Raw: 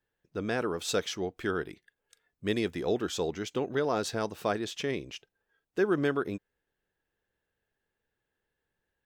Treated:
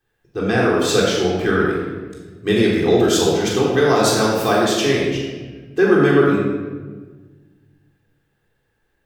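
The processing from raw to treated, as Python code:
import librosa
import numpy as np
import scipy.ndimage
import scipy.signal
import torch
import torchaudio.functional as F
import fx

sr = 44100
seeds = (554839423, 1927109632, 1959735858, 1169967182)

y = fx.high_shelf(x, sr, hz=4700.0, db=9.5, at=(2.98, 5.11))
y = fx.room_shoebox(y, sr, seeds[0], volume_m3=1200.0, walls='mixed', distance_m=3.7)
y = F.gain(torch.from_numpy(y), 6.5).numpy()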